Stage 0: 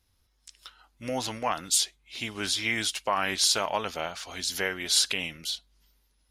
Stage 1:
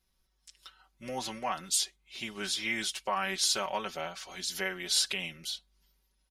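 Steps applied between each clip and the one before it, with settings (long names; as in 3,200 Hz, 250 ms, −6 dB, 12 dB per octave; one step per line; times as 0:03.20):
comb filter 5.3 ms, depth 76%
level −6.5 dB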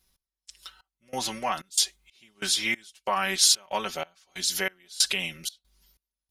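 high-shelf EQ 4,700 Hz +7 dB
gate pattern "x..xx..xxx.x" 93 BPM −24 dB
level +4.5 dB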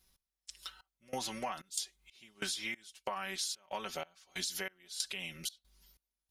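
downward compressor 16 to 1, threshold −33 dBFS, peak gain reduction 18 dB
level −1.5 dB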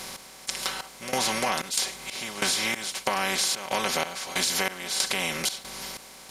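compressor on every frequency bin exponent 0.4
level +7 dB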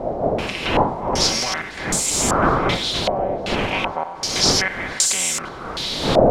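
spike at every zero crossing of −17 dBFS
wind on the microphone 620 Hz −24 dBFS
low-pass on a step sequencer 2.6 Hz 650–7,500 Hz
level −1.5 dB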